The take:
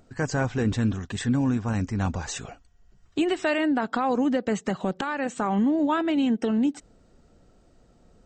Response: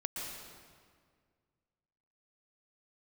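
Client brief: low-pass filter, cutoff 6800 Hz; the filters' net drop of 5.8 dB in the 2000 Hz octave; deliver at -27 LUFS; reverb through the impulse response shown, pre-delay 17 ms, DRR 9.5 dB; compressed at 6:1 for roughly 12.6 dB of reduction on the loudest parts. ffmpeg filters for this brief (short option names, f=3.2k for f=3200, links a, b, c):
-filter_complex "[0:a]lowpass=6.8k,equalizer=f=2k:t=o:g=-8,acompressor=threshold=-34dB:ratio=6,asplit=2[a][b];[1:a]atrim=start_sample=2205,adelay=17[c];[b][c]afir=irnorm=-1:irlink=0,volume=-11.5dB[d];[a][d]amix=inputs=2:normalize=0,volume=10dB"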